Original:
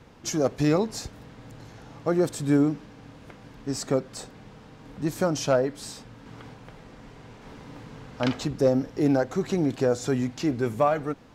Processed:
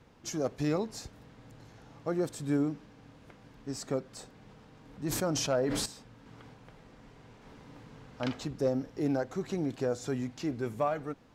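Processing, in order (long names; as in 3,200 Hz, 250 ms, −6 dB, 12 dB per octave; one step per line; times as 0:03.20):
0:04.39–0:05.86: level that may fall only so fast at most 23 dB per second
level −8 dB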